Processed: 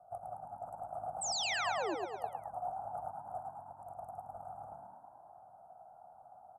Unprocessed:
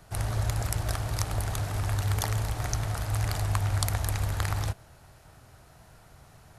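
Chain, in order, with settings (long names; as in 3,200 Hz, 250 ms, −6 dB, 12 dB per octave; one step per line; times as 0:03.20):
Chebyshev band-stop filter 890–9,000 Hz, order 3
flat-topped bell 1,900 Hz +8.5 dB
comb filter 1.4 ms, depth 84%
hum removal 75.52 Hz, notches 29
compressor whose output falls as the input rises −28 dBFS, ratio −0.5
formant filter a
sound drawn into the spectrogram fall, 0:01.21–0:01.95, 290–8,500 Hz −36 dBFS
echo with shifted repeats 108 ms, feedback 59%, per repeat +44 Hz, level −4 dB
convolution reverb, pre-delay 40 ms, DRR 22 dB
level −1.5 dB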